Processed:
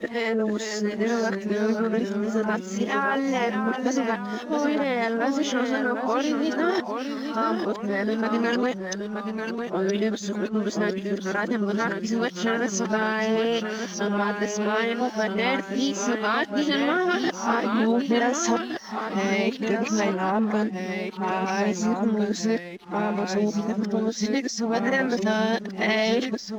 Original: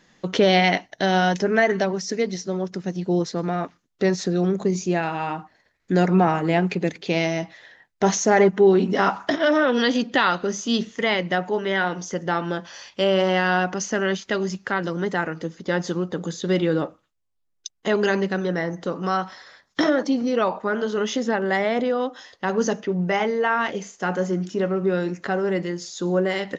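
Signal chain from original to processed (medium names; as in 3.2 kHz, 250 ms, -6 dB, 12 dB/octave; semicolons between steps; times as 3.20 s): reverse the whole clip; compression 3:1, threshold -25 dBFS, peak gain reduction 10.5 dB; formant-preserving pitch shift +3 st; ever faster or slower copies 440 ms, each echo -1 st, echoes 2, each echo -6 dB; hysteresis with a dead band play -51.5 dBFS; trim +2.5 dB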